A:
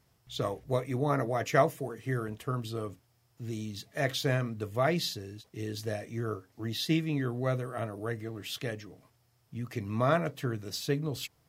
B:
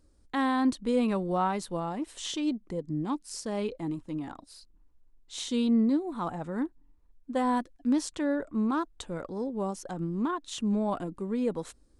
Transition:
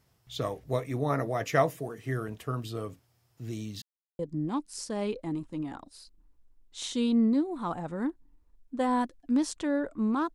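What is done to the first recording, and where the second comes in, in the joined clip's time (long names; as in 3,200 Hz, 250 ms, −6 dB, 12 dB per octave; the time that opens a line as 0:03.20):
A
0:03.82–0:04.19: silence
0:04.19: continue with B from 0:02.75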